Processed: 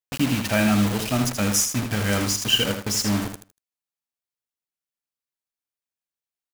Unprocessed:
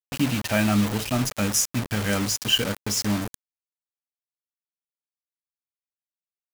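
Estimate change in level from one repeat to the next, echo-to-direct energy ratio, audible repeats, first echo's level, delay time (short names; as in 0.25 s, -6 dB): -13.5 dB, -7.0 dB, 3, -7.0 dB, 79 ms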